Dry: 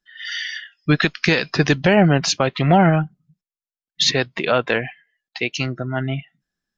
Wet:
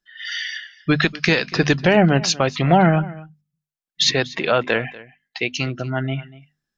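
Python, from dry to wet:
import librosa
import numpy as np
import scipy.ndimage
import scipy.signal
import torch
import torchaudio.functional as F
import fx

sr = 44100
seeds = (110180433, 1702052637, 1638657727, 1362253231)

y = fx.hum_notches(x, sr, base_hz=50, count=5)
y = y + 10.0 ** (-19.5 / 20.0) * np.pad(y, (int(241 * sr / 1000.0), 0))[:len(y)]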